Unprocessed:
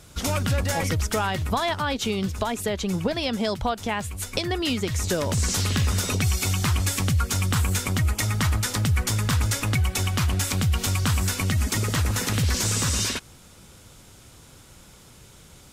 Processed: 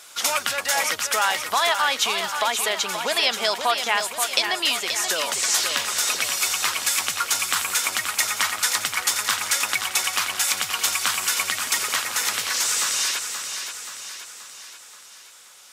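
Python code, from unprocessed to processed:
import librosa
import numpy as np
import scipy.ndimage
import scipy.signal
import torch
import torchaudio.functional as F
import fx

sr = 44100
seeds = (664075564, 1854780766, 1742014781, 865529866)

y = scipy.signal.sosfilt(scipy.signal.butter(2, 950.0, 'highpass', fs=sr, output='sos'), x)
y = fx.rider(y, sr, range_db=10, speed_s=2.0)
y = fx.echo_feedback(y, sr, ms=529, feedback_pct=53, wet_db=-7.5)
y = y * 10.0 ** (6.0 / 20.0)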